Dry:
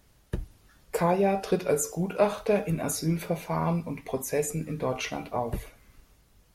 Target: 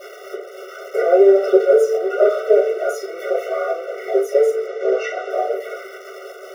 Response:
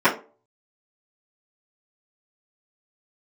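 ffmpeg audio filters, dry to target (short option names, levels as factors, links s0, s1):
-filter_complex "[0:a]aeval=exprs='val(0)+0.5*0.0335*sgn(val(0))':c=same,lowshelf=f=440:g=10.5,asplit=2[s0][s1];[s1]acrusher=bits=4:mix=0:aa=0.000001,volume=0.447[s2];[s0][s2]amix=inputs=2:normalize=0,asettb=1/sr,asplit=3[s3][s4][s5];[s3]atrim=end=4.664[s6];[s4]atrim=start=4.66:end=5.3,asetpts=PTS-STARTPTS,afade=t=in:d=0.004:c=qsin,afade=t=out:st=0.636:d=0.004:c=qsin,lowpass=f=7500:w=0.5412,lowpass=f=7500:w=1.3066[s7];[s5]atrim=start=5.296[s8];[s6][s7]acrossfade=d=0.004:c1=hsin:c2=qsin[s9];[s9][s8]acrossfade=d=0.004:c1=qsin:c2=hsin[s10];[1:a]atrim=start_sample=2205[s11];[s10][s11]afir=irnorm=-1:irlink=0,afftfilt=real='re*eq(mod(floor(b*sr/1024/380),2),1)':imag='im*eq(mod(floor(b*sr/1024/380),2),1)':win_size=1024:overlap=0.75,volume=0.133"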